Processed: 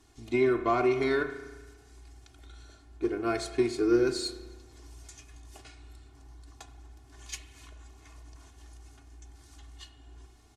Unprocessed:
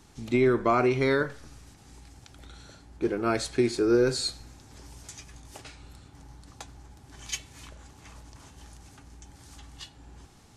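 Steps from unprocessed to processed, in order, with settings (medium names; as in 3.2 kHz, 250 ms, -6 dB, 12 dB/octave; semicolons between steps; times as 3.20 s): Chebyshev shaper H 7 -31 dB, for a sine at -11.5 dBFS; comb 2.8 ms, depth 77%; spring tank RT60 1.3 s, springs 34 ms, chirp 55 ms, DRR 10 dB; trim -6 dB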